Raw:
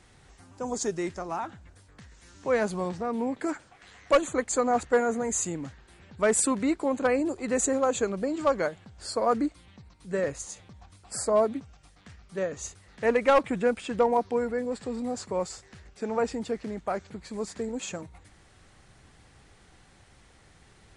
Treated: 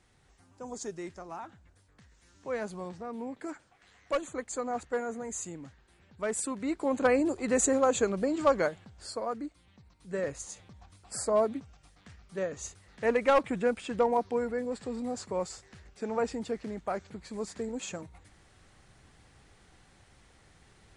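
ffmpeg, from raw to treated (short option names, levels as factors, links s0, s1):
-af "volume=2.82,afade=t=in:st=6.59:d=0.44:silence=0.354813,afade=t=out:st=8.61:d=0.75:silence=0.251189,afade=t=in:st=9.36:d=1.14:silence=0.354813"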